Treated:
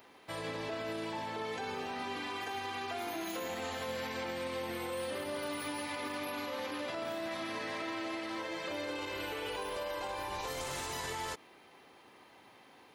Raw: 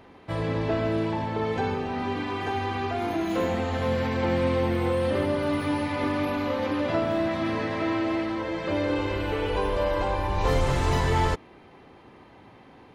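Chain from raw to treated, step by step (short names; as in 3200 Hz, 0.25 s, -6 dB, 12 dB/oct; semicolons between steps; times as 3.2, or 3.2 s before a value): RIAA curve recording; limiter -24 dBFS, peak gain reduction 9.5 dB; gain -6 dB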